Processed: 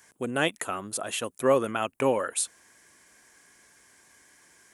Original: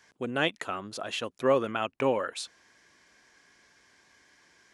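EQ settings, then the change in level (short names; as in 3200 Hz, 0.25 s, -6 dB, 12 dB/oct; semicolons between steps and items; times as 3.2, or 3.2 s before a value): resonant high shelf 6800 Hz +13 dB, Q 1.5; +2.0 dB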